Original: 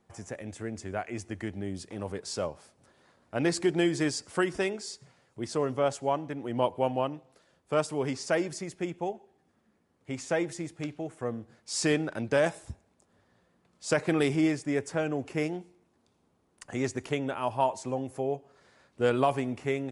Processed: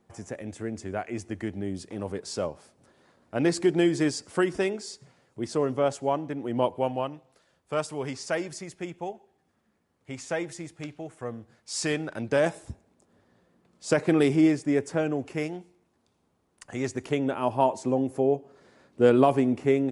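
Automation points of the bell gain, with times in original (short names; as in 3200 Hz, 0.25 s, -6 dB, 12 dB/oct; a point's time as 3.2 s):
bell 290 Hz 2.1 oct
6.63 s +4 dB
7.13 s -3 dB
11.96 s -3 dB
12.57 s +5.5 dB
14.99 s +5.5 dB
15.48 s -1.5 dB
16.7 s -1.5 dB
17.46 s +9.5 dB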